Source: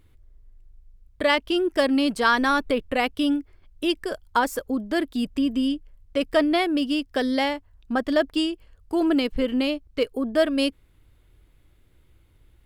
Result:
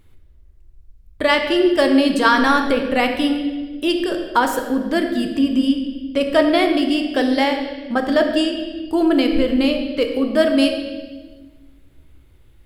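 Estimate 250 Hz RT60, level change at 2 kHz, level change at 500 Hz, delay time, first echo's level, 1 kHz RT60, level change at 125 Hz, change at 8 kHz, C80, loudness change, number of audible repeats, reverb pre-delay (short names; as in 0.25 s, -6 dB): 1.9 s, +5.5 dB, +6.5 dB, none, none, 1.1 s, n/a, +5.0 dB, 7.5 dB, +6.0 dB, none, 5 ms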